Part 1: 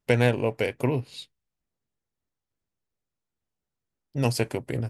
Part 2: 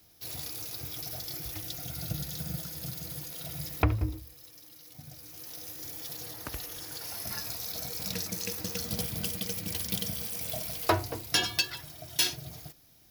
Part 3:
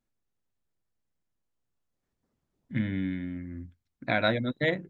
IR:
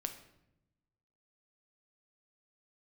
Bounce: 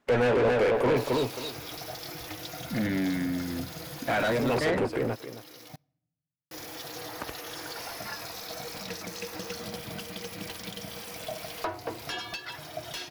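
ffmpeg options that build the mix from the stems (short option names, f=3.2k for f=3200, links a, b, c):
-filter_complex "[0:a]highpass=f=210:p=1,highshelf=f=2.8k:g=-5.5,asoftclip=type=tanh:threshold=-21.5dB,volume=0.5dB,asplit=2[a][b];[b]volume=-5dB[c];[1:a]acompressor=threshold=-36dB:ratio=10,adelay=750,volume=-6.5dB,asplit=3[d][e][f];[d]atrim=end=5.76,asetpts=PTS-STARTPTS,afade=t=out:st=5.756:d=0.004:c=hsin[g];[e]atrim=start=5.76:end=6.51,asetpts=PTS-STARTPTS,volume=0[h];[f]atrim=start=6.51,asetpts=PTS-STARTPTS,afade=t=in:d=0.004:c=hsin[i];[g][h][i]concat=n=3:v=0:a=1,asplit=2[j][k];[k]volume=-18.5dB[l];[2:a]asoftclip=type=tanh:threshold=-28dB,volume=-3dB,asplit=2[m][n];[n]apad=whole_len=215924[o];[a][o]sidechaincompress=threshold=-52dB:ratio=8:attack=16:release=131[p];[3:a]atrim=start_sample=2205[q];[l][q]afir=irnorm=-1:irlink=0[r];[c]aecho=0:1:268|536|804:1|0.15|0.0225[s];[p][j][m][r][s]amix=inputs=5:normalize=0,asplit=2[t][u];[u]highpass=f=720:p=1,volume=28dB,asoftclip=type=tanh:threshold=-15.5dB[v];[t][v]amix=inputs=2:normalize=0,lowpass=f=1.3k:p=1,volume=-6dB"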